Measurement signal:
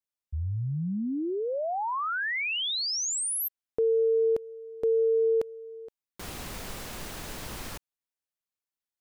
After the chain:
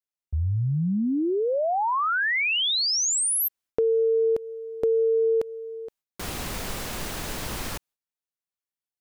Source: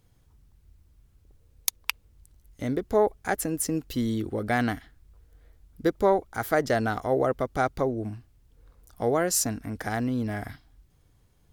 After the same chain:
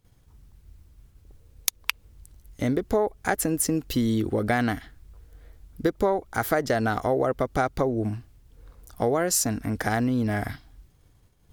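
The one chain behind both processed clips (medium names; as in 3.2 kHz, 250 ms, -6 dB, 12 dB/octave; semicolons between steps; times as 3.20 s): expander -57 dBFS, range -11 dB; compression 4:1, threshold -27 dBFS; trim +6.5 dB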